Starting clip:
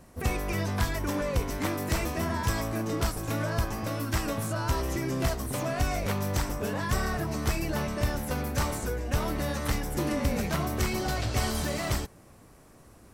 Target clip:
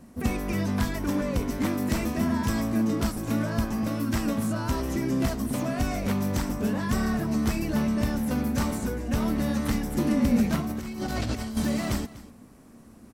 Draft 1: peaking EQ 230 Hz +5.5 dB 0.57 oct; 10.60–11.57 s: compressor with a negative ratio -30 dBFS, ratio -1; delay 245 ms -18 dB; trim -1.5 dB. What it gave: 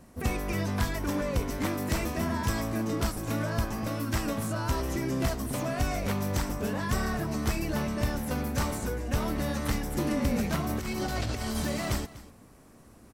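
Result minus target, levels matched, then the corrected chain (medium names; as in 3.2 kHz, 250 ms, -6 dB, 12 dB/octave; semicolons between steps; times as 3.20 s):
250 Hz band -3.0 dB
peaking EQ 230 Hz +14.5 dB 0.57 oct; 10.60–11.57 s: compressor with a negative ratio -30 dBFS, ratio -1; delay 245 ms -18 dB; trim -1.5 dB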